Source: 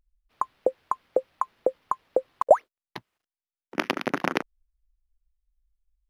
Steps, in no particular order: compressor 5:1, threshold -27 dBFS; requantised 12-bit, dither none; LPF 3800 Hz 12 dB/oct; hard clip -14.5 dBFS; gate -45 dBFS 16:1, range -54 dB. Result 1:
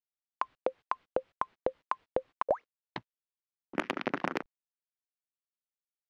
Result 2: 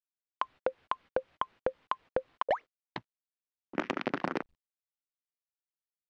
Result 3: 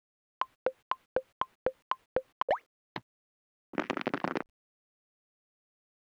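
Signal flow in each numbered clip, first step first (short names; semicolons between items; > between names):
compressor > gate > requantised > LPF > hard clip; hard clip > gate > compressor > requantised > LPF; hard clip > compressor > gate > LPF > requantised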